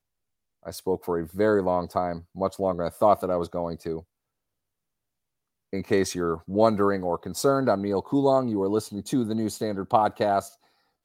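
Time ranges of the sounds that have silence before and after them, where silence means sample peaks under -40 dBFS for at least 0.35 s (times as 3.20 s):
0.66–4.00 s
5.73–10.49 s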